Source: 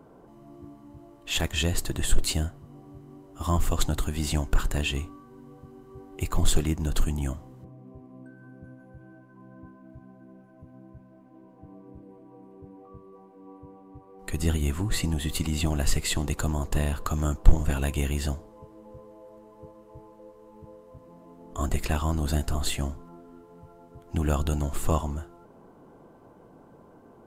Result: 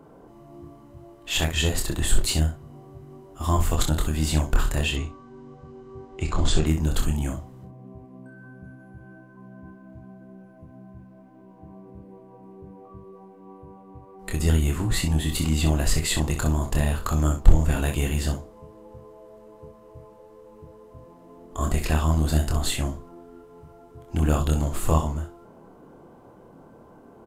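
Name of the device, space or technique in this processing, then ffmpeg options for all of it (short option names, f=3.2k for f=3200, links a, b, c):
slapback doubling: -filter_complex "[0:a]asplit=3[a][b][c];[b]adelay=26,volume=-4.5dB[d];[c]adelay=63,volume=-8.5dB[e];[a][d][e]amix=inputs=3:normalize=0,asettb=1/sr,asplit=3[f][g][h];[f]atrim=end=4.964[i];[g]atrim=start=4.96:end=6.66,asetpts=PTS-STARTPTS,afade=t=in:d=0.004:c=qsin,afade=t=out:st=1.696:d=0.004:c=qsin,lowpass=f=6.9k:w=0.5412,lowpass=f=6.9k:w=1.3066[j];[h]atrim=start=6.656[k];[i][j]acrossfade=d=0.004:c1=hsin:c2=qsin[l];[l][k]acrossfade=d=0.004:c1=qsin:c2=hsin,volume=1.5dB"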